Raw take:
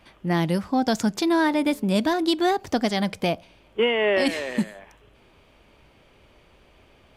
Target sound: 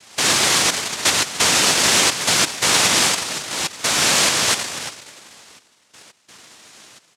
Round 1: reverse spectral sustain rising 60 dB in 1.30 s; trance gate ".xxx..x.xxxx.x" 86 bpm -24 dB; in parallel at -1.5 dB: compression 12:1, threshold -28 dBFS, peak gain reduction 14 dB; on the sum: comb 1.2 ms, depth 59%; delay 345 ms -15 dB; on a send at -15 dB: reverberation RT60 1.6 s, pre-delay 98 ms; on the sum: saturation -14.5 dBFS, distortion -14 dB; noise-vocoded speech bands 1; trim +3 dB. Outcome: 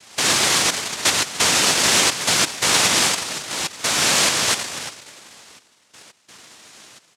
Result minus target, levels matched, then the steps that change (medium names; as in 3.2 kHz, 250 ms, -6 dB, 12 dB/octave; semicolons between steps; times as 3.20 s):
compression: peak gain reduction +7.5 dB
change: compression 12:1, threshold -20 dBFS, peak gain reduction 6.5 dB